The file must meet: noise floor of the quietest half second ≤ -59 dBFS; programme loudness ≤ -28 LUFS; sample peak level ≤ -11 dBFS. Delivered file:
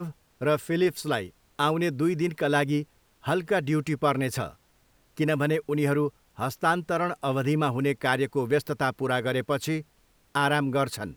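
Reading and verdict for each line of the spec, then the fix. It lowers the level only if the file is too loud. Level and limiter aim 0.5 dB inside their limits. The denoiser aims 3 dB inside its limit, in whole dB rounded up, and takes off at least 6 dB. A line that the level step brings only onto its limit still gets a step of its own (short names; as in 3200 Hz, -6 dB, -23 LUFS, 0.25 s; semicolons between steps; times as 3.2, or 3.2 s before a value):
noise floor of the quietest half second -64 dBFS: OK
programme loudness -27.0 LUFS: fail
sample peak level -8.5 dBFS: fail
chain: gain -1.5 dB; limiter -11.5 dBFS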